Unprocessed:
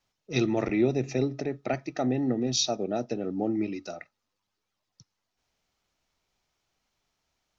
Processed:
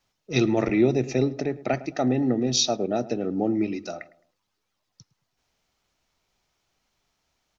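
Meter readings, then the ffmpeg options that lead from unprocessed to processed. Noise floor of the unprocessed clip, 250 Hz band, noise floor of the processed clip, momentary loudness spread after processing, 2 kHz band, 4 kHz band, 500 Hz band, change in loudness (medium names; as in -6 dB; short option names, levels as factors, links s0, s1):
-83 dBFS, +4.0 dB, -78 dBFS, 8 LU, +4.0 dB, +4.0 dB, +4.0 dB, +4.0 dB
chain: -filter_complex "[0:a]asplit=2[s0][s1];[s1]adelay=107,lowpass=f=1300:p=1,volume=0.15,asplit=2[s2][s3];[s3]adelay=107,lowpass=f=1300:p=1,volume=0.37,asplit=2[s4][s5];[s5]adelay=107,lowpass=f=1300:p=1,volume=0.37[s6];[s0][s2][s4][s6]amix=inputs=4:normalize=0,volume=1.58"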